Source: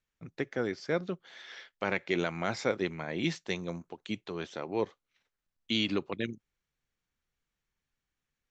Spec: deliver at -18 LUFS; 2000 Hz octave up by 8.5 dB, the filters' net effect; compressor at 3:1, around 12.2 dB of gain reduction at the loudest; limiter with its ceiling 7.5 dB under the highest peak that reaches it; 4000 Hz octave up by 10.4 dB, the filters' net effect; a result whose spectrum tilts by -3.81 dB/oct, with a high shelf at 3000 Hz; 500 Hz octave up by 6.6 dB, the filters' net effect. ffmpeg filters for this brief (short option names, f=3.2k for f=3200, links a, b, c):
-af "equalizer=f=500:t=o:g=7.5,equalizer=f=2k:t=o:g=6,highshelf=f=3k:g=5.5,equalizer=f=4k:t=o:g=7,acompressor=threshold=-34dB:ratio=3,volume=20.5dB,alimiter=limit=-2.5dB:level=0:latency=1"